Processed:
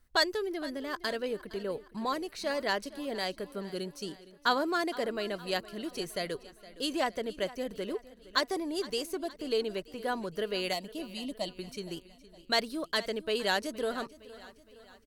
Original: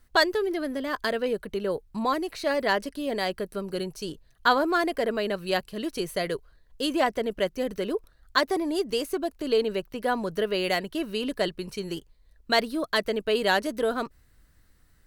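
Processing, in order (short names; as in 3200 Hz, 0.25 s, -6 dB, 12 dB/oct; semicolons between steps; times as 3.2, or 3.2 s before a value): 3.52–5.06 resonant low shelf 140 Hz -8.5 dB, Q 1.5; 10.73–11.56 fixed phaser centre 420 Hz, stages 6; dynamic EQ 6300 Hz, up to +7 dB, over -45 dBFS, Q 0.71; feedback echo 0.464 s, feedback 52%, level -18 dB; gain -7 dB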